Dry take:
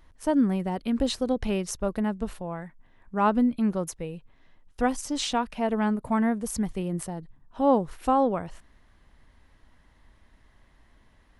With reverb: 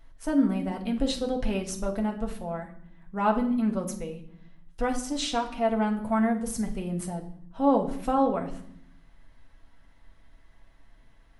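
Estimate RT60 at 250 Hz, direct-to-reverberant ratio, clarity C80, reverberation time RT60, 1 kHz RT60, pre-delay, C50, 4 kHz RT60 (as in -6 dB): 1.1 s, 1.0 dB, 15.0 dB, 0.65 s, 0.65 s, 4 ms, 11.0 dB, 0.60 s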